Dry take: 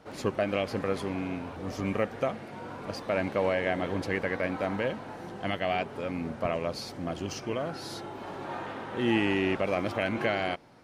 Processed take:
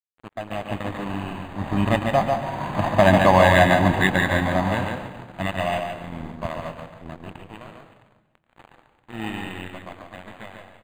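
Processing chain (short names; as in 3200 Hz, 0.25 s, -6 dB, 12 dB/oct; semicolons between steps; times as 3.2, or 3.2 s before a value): Doppler pass-by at 3.15, 15 m/s, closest 14 m; bell 270 Hz -6 dB 0.25 oct; comb 1.1 ms, depth 85%; dynamic EQ 7400 Hz, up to +6 dB, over -59 dBFS, Q 1; AGC gain up to 8 dB; crossover distortion -36 dBFS; echo 0.143 s -5 dB; on a send at -10 dB: reverb RT60 1.0 s, pre-delay 0.116 s; on the sum: decimation joined by straight lines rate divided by 8×; gain +7 dB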